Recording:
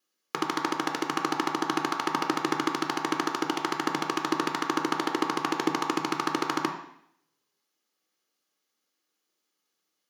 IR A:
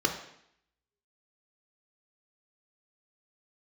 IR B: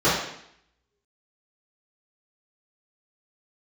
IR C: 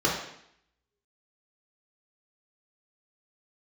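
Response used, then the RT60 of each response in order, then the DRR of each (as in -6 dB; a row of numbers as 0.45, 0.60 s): A; 0.70, 0.70, 0.70 s; 2.5, -13.5, -5.0 dB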